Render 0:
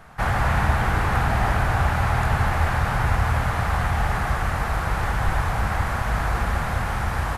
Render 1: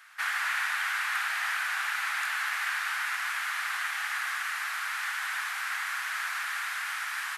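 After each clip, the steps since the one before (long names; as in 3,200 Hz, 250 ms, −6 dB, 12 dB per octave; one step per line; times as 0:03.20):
high-pass filter 1,500 Hz 24 dB per octave
level +1 dB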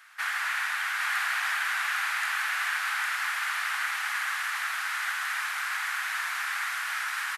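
single-tap delay 807 ms −3 dB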